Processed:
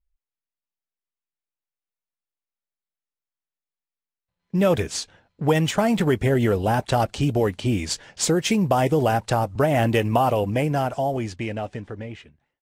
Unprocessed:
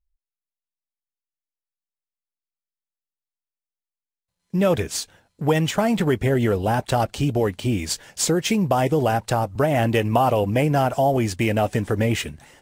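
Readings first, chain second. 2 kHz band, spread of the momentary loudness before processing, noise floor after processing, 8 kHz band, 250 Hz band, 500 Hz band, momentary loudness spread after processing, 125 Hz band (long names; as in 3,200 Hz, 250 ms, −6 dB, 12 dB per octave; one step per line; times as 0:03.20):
−1.0 dB, 6 LU, below −85 dBFS, −2.0 dB, −1.0 dB, −1.0 dB, 10 LU, −1.0 dB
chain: fade-out on the ending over 2.75 s
low-pass that shuts in the quiet parts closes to 2,900 Hz, open at −17.5 dBFS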